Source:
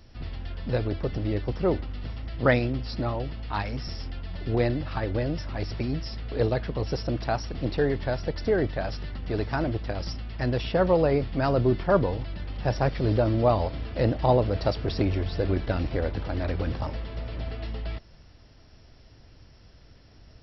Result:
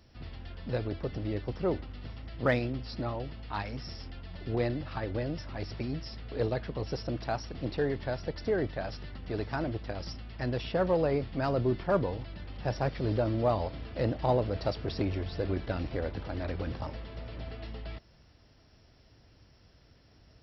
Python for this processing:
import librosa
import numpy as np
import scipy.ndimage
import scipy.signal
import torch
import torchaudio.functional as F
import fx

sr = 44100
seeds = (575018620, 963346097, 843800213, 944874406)

p1 = fx.highpass(x, sr, hz=61.0, slope=6)
p2 = np.clip(p1, -10.0 ** (-17.5 / 20.0), 10.0 ** (-17.5 / 20.0))
p3 = p1 + (p2 * librosa.db_to_amplitude(-10.0))
y = p3 * librosa.db_to_amplitude(-7.5)